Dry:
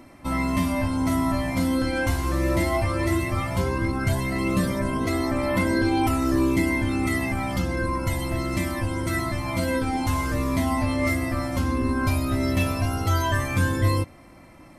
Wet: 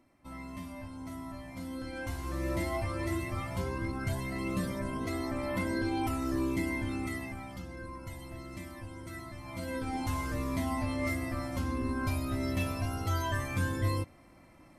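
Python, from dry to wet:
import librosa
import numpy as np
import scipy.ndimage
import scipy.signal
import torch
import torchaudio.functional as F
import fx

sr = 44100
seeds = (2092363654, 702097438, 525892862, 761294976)

y = fx.gain(x, sr, db=fx.line((1.47, -19.0), (2.49, -10.0), (6.93, -10.0), (7.57, -17.5), (9.34, -17.5), (9.95, -9.0)))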